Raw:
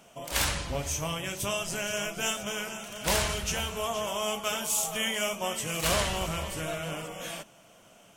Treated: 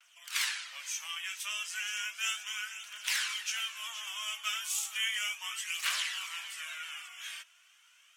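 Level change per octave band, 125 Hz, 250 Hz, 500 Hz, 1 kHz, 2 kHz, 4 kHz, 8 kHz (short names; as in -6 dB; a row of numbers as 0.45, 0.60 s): under -40 dB, under -40 dB, -33.5 dB, -11.0 dB, -1.5 dB, -1.5 dB, -5.0 dB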